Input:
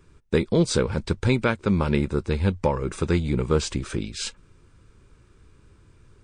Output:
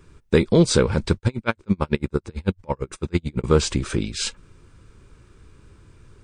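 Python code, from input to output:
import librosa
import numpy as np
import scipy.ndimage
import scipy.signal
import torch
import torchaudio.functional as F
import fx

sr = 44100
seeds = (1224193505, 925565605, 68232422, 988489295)

y = fx.tremolo_db(x, sr, hz=9.0, depth_db=38, at=(1.16, 3.44))
y = F.gain(torch.from_numpy(y), 4.5).numpy()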